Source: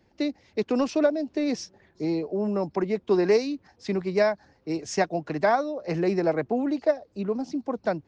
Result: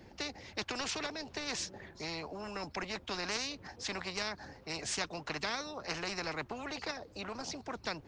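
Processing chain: spectrum-flattening compressor 4:1; trim -8 dB

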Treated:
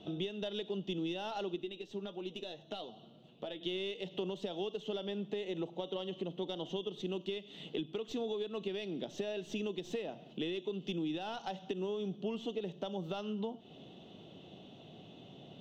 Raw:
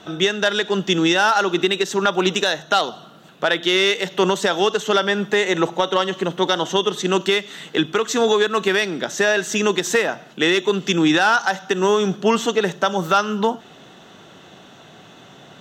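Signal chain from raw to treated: tracing distortion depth 0.026 ms; FFT filter 280 Hz 0 dB, 680 Hz -4 dB, 1.6 kHz -23 dB, 3 kHz -2 dB, 7.4 kHz -21 dB; compression 4:1, threshold -31 dBFS, peak gain reduction 14 dB; 1.56–3.61 s: flange 1.2 Hz, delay 7.9 ms, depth 1.9 ms, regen +44%; trim -6 dB

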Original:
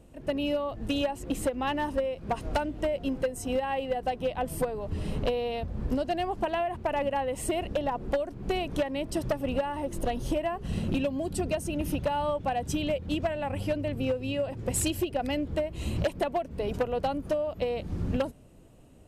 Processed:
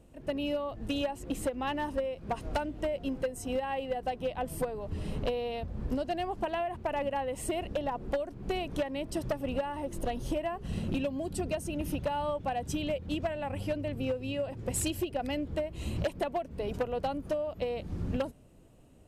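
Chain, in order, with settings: trim -3.5 dB

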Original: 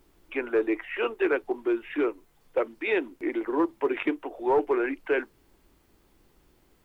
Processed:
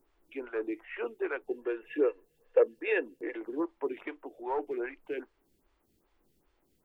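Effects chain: 1.47–3.37 s: small resonant body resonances 480/1700/2700 Hz, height 16 dB, ringing for 45 ms; lamp-driven phase shifter 2.5 Hz; trim -6.5 dB

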